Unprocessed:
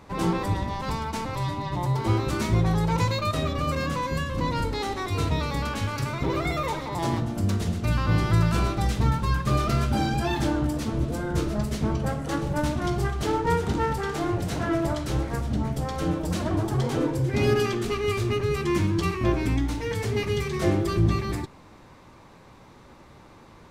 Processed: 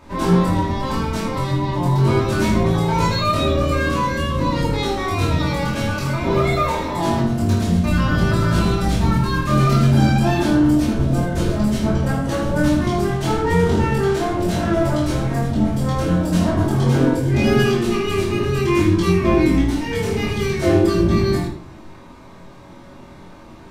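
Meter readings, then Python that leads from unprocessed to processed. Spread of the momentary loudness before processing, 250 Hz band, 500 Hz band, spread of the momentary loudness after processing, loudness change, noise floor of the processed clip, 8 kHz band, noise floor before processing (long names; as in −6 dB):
5 LU, +9.5 dB, +8.0 dB, 6 LU, +7.5 dB, −41 dBFS, +5.5 dB, −50 dBFS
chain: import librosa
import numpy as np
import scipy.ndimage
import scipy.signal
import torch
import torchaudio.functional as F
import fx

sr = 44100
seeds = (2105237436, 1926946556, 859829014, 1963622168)

y = fx.room_early_taps(x, sr, ms=(23, 79), db=(-3.5, -8.0))
y = fx.room_shoebox(y, sr, seeds[0], volume_m3=350.0, walls='furnished', distance_m=2.7)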